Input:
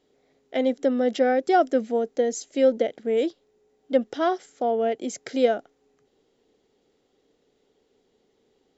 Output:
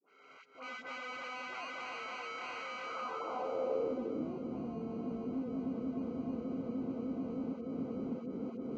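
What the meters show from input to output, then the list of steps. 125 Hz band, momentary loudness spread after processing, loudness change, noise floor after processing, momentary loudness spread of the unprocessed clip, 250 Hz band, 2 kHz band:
no reading, 6 LU, -15.0 dB, -58 dBFS, 7 LU, -9.0 dB, -8.0 dB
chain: backward echo that repeats 152 ms, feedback 78%, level -6 dB; recorder AGC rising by 29 dB/s; high-pass 110 Hz 24 dB/octave; echo that smears into a reverb 1070 ms, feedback 40%, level -11.5 dB; compression 6:1, threshold -24 dBFS, peak gain reduction 10.5 dB; harmonic-percussive split harmonic +4 dB; slow attack 335 ms; sample-and-hold 25×; hard clipper -39 dBFS, distortion -3 dB; band-pass sweep 1.8 kHz -> 220 Hz, 2.75–4.32 s; phase dispersion highs, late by 87 ms, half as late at 840 Hz; trim +9 dB; Vorbis 48 kbps 16 kHz

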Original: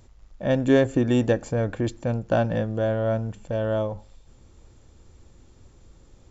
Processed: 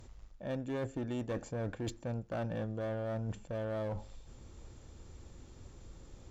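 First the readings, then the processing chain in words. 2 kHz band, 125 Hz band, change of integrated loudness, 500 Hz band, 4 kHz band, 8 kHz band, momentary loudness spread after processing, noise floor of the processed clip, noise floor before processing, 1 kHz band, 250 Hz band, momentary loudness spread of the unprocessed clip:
-15.0 dB, -12.5 dB, -14.5 dB, -15.0 dB, -13.5 dB, no reading, 18 LU, -55 dBFS, -54 dBFS, -13.0 dB, -15.0 dB, 10 LU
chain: reverse; compression 5:1, threshold -35 dBFS, peak gain reduction 19 dB; reverse; one-sided clip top -34.5 dBFS

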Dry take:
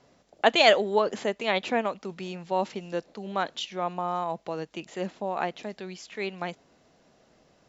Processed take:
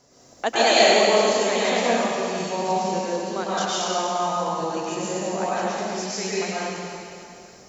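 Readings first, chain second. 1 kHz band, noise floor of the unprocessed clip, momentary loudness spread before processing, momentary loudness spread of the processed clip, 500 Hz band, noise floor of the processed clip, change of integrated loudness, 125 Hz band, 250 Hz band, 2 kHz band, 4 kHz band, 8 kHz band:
+6.0 dB, -63 dBFS, 17 LU, 13 LU, +5.5 dB, -50 dBFS, +5.5 dB, +6.0 dB, +6.5 dB, +4.5 dB, +6.0 dB, no reading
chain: resonant high shelf 4.4 kHz +9.5 dB, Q 1.5; in parallel at 0 dB: compression, threshold -37 dBFS, peak gain reduction 21.5 dB; on the sum: plate-style reverb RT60 2.6 s, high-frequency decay 1×, pre-delay 90 ms, DRR -9 dB; trim -5 dB

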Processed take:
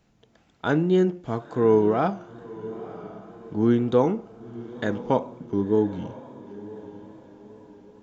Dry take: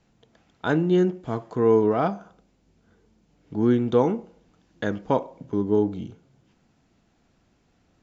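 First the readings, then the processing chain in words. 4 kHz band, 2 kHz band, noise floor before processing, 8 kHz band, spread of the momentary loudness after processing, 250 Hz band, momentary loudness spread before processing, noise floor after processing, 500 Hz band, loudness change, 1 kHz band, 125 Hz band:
0.0 dB, 0.0 dB, -65 dBFS, no reading, 21 LU, 0.0 dB, 13 LU, -62 dBFS, 0.0 dB, 0.0 dB, +0.5 dB, 0.0 dB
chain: echo that smears into a reverb 988 ms, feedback 42%, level -16 dB; wow and flutter 42 cents

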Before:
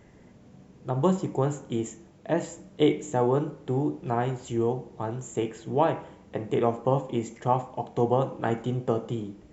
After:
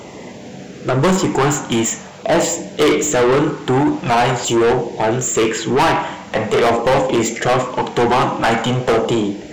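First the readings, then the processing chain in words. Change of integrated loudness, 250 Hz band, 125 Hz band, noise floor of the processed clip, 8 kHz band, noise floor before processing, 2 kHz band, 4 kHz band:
+11.5 dB, +10.5 dB, +7.5 dB, -35 dBFS, no reading, -54 dBFS, +21.0 dB, +20.0 dB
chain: LFO notch saw down 0.45 Hz 290–1800 Hz; overdrive pedal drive 31 dB, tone 6.9 kHz, clips at -9.5 dBFS; trim +3.5 dB

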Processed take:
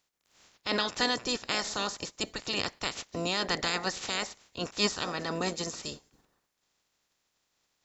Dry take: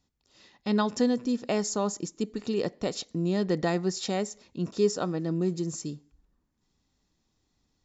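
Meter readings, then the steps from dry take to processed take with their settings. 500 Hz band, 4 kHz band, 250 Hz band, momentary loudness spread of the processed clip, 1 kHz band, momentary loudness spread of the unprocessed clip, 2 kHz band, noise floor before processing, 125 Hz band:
-7.0 dB, +8.5 dB, -9.5 dB, 9 LU, +1.0 dB, 8 LU, +7.5 dB, -76 dBFS, -9.5 dB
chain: spectral peaks clipped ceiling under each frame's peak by 29 dB; trim -3.5 dB

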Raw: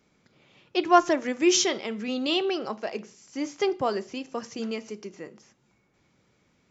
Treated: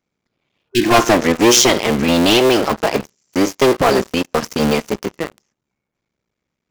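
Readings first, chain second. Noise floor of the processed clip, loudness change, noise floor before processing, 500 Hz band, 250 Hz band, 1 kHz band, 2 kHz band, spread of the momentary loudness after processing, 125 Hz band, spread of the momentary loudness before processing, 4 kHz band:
-80 dBFS, +11.5 dB, -68 dBFS, +12.0 dB, +12.0 dB, +8.5 dB, +13.5 dB, 13 LU, +24.5 dB, 19 LU, +12.5 dB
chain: cycle switcher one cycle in 3, muted; waveshaping leveller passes 5; spectral replace 0.71–0.92 s, 400–1500 Hz both

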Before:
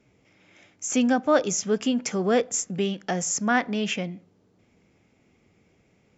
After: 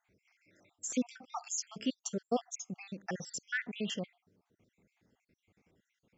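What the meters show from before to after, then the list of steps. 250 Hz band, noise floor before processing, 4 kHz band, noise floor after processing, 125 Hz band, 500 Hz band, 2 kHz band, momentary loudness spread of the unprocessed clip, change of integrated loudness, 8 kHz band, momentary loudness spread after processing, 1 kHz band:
-13.5 dB, -64 dBFS, -10.5 dB, under -85 dBFS, -13.0 dB, -16.0 dB, -11.0 dB, 7 LU, -13.5 dB, no reading, 8 LU, -15.0 dB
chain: random holes in the spectrogram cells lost 59%; trim -7.5 dB

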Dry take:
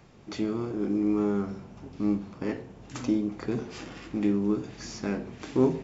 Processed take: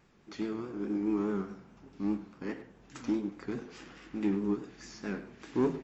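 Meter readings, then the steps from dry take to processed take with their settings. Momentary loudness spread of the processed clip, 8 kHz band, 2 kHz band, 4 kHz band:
17 LU, no reading, -3.5 dB, -7.0 dB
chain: fifteen-band graphic EQ 100 Hz -9 dB, 630 Hz -4 dB, 1.6 kHz +4 dB; saturation -18 dBFS, distortion -19 dB; vibrato 4.8 Hz 72 cents; speakerphone echo 100 ms, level -8 dB; upward expansion 1.5:1, over -37 dBFS; trim -1.5 dB

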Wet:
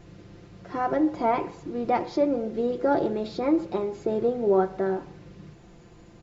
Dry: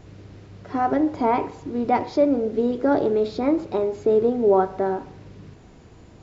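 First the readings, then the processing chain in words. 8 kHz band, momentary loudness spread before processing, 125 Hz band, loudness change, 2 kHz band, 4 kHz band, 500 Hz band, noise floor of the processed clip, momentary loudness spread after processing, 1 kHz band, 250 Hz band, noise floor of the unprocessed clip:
no reading, 7 LU, -2.5 dB, -4.0 dB, -2.5 dB, -2.0 dB, -4.5 dB, -51 dBFS, 9 LU, -4.0 dB, -4.0 dB, -48 dBFS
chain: comb 5.8 ms, depth 60%; trim -3.5 dB

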